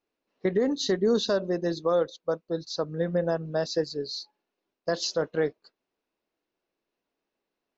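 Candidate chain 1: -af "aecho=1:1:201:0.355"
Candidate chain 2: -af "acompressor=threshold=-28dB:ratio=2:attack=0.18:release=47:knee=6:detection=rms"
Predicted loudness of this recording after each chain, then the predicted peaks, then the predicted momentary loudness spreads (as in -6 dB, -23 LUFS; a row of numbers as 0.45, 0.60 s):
-27.5, -33.0 LUFS; -13.0, -21.0 dBFS; 11, 7 LU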